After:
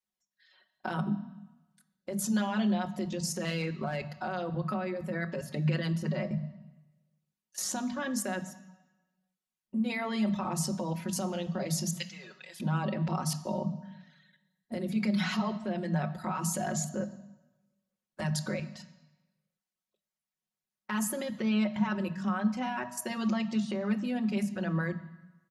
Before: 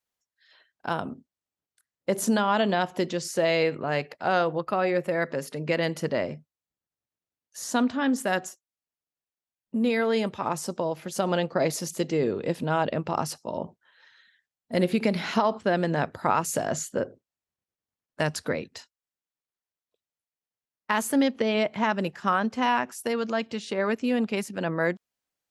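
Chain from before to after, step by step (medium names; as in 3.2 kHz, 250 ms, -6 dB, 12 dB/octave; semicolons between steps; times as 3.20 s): 11.98–12.60 s: Bessel high-pass 2 kHz, order 2; reverb removal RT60 0.69 s; comb 5.4 ms, depth 94%; in parallel at +2 dB: compression, threshold -29 dBFS, peak gain reduction 15 dB; on the sum: peak limiter -14 dBFS, peak gain reduction 11 dB; level held to a coarse grid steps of 15 dB; 3.19–4.09 s: overload inside the chain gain 22 dB; resampled via 32 kHz; on a send at -10 dB: reverberation RT60 1.1 s, pre-delay 3 ms; on the sum: trim -4.5 dB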